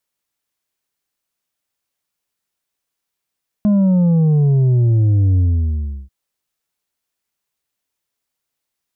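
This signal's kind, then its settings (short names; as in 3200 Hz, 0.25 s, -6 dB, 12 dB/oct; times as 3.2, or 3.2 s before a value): sub drop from 210 Hz, over 2.44 s, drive 5 dB, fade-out 0.71 s, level -11 dB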